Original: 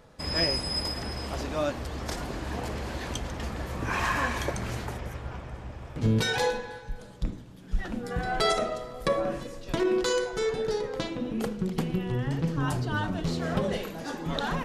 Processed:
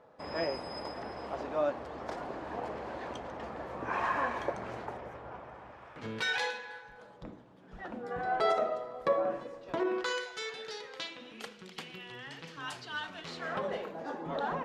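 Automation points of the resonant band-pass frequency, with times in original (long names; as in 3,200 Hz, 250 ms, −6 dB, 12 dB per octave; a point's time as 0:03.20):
resonant band-pass, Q 0.93
0:05.32 720 Hz
0:06.56 2,500 Hz
0:07.20 790 Hz
0:09.83 790 Hz
0:10.30 3,000 Hz
0:13.07 3,000 Hz
0:13.94 680 Hz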